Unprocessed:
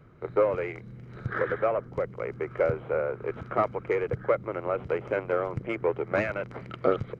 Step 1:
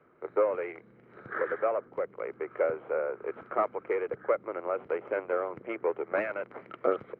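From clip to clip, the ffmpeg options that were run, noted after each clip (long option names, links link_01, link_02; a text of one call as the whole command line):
ffmpeg -i in.wav -filter_complex "[0:a]acrossover=split=260 2700:gain=0.0708 1 0.0708[link_01][link_02][link_03];[link_01][link_02][link_03]amix=inputs=3:normalize=0,volume=-2dB" out.wav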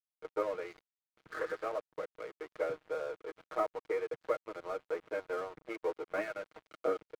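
ffmpeg -i in.wav -af "aecho=1:1:6.4:0.91,aeval=exprs='sgn(val(0))*max(abs(val(0))-0.00841,0)':channel_layout=same,volume=-7.5dB" out.wav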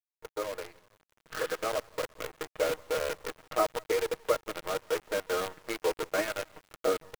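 ffmpeg -i in.wav -filter_complex "[0:a]asplit=2[link_01][link_02];[link_02]adelay=174,lowpass=frequency=3900:poles=1,volume=-22dB,asplit=2[link_03][link_04];[link_04]adelay=174,lowpass=frequency=3900:poles=1,volume=0.51,asplit=2[link_05][link_06];[link_06]adelay=174,lowpass=frequency=3900:poles=1,volume=0.51,asplit=2[link_07][link_08];[link_08]adelay=174,lowpass=frequency=3900:poles=1,volume=0.51[link_09];[link_01][link_03][link_05][link_07][link_09]amix=inputs=5:normalize=0,acrusher=bits=7:dc=4:mix=0:aa=0.000001,dynaudnorm=framelen=500:gausssize=5:maxgain=7dB,volume=-1.5dB" out.wav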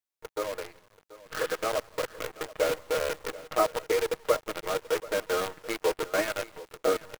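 ffmpeg -i in.wav -af "aecho=1:1:733:0.126,volume=2.5dB" out.wav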